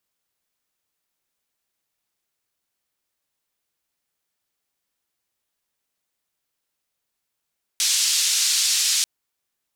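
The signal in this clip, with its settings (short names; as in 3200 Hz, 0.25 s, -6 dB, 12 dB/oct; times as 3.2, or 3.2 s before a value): noise band 4400–6100 Hz, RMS -20.5 dBFS 1.24 s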